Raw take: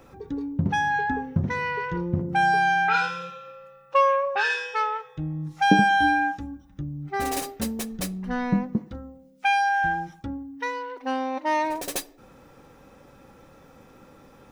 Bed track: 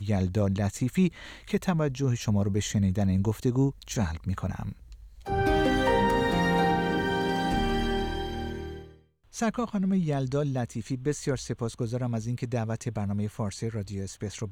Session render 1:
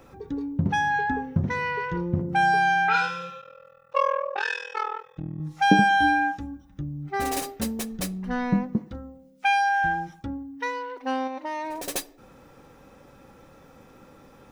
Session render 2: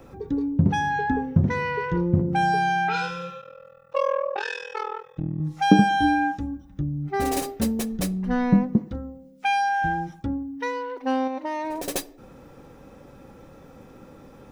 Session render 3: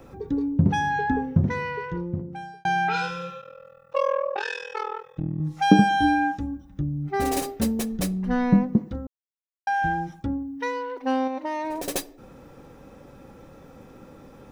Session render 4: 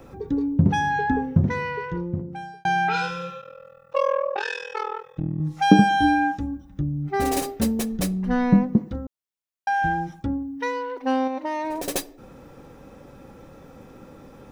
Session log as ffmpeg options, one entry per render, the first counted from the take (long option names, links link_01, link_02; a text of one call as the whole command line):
ffmpeg -i in.wav -filter_complex "[0:a]asettb=1/sr,asplit=3[link_01][link_02][link_03];[link_01]atrim=end=3.414[link_04];[link_02]atrim=start=3.41:end=5.4,asetpts=PTS-STARTPTS,afade=type=in:duration=0.004:curve=qsin,afade=type=out:start_time=1.986:duration=0.004:curve=qsin,tremolo=f=41:d=0.947[link_05];[link_03]atrim=start=5.396[link_06];[link_04][link_05]acrossfade=duration=0.004:curve1=hsin:curve2=qsin[link_07];[link_07][link_06]acrossfade=duration=0.004:curve1=qsin:curve2=hsin,asettb=1/sr,asplit=3[link_08][link_09][link_10];[link_08]atrim=end=11.274[link_11];[link_09]atrim=start=11.27:end=11.88,asetpts=PTS-STARTPTS,afade=type=in:duration=0.004:curve=qsin,afade=type=out:start_time=0.606:duration=0.004:curve=qsin,acompressor=threshold=-29dB:ratio=4:attack=3.2:release=140:knee=1:detection=peak[link_12];[link_10]atrim=start=11.876[link_13];[link_11][link_12]acrossfade=duration=0.004:curve1=hsin:curve2=qsin[link_14];[link_14][link_13]acrossfade=duration=0.004:curve1=qsin:curve2=hsin" out.wav
ffmpeg -i in.wav -filter_complex "[0:a]acrossover=split=650|2400[link_01][link_02][link_03];[link_01]acontrast=36[link_04];[link_02]alimiter=level_in=0.5dB:limit=-24dB:level=0:latency=1:release=244,volume=-0.5dB[link_05];[link_04][link_05][link_03]amix=inputs=3:normalize=0" out.wav
ffmpeg -i in.wav -filter_complex "[0:a]asplit=4[link_01][link_02][link_03][link_04];[link_01]atrim=end=2.65,asetpts=PTS-STARTPTS,afade=type=out:start_time=1.24:duration=1.41[link_05];[link_02]atrim=start=2.65:end=9.07,asetpts=PTS-STARTPTS,afade=type=in:duration=0.004:curve=hsin,afade=type=out:start_time=6.416:duration=0.004:curve=hsin[link_06];[link_03]atrim=start=9.07:end=9.67,asetpts=PTS-STARTPTS,volume=0[link_07];[link_04]atrim=start=9.67,asetpts=PTS-STARTPTS,afade=type=in:duration=0.004:curve=hsin[link_08];[link_05][link_06][link_07][link_08]concat=n=4:v=0:a=1" out.wav
ffmpeg -i in.wav -af "volume=1.5dB" out.wav